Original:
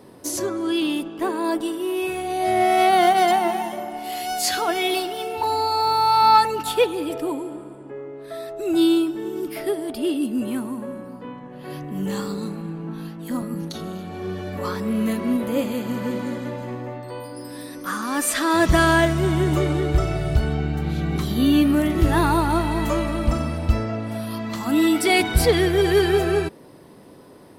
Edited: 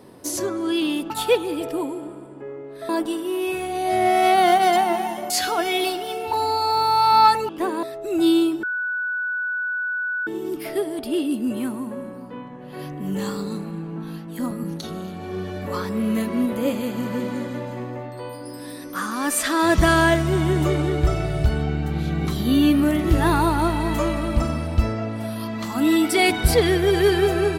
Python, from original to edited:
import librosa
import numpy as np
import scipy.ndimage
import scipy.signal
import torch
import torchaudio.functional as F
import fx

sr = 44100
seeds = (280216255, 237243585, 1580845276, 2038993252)

y = fx.edit(x, sr, fx.swap(start_s=1.1, length_s=0.34, other_s=6.59, other_length_s=1.79),
    fx.cut(start_s=3.85, length_s=0.55),
    fx.insert_tone(at_s=9.18, length_s=1.64, hz=1480.0, db=-22.5), tone=tone)